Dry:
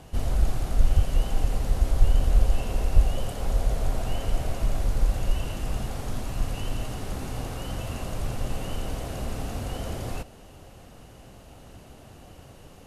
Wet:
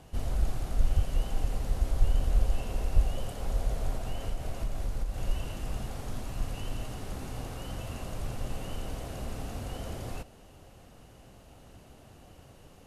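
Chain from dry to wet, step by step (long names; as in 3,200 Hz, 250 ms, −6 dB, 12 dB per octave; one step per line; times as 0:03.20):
0:03.95–0:05.18: downward compressor, threshold −21 dBFS, peak gain reduction 7.5 dB
level −5.5 dB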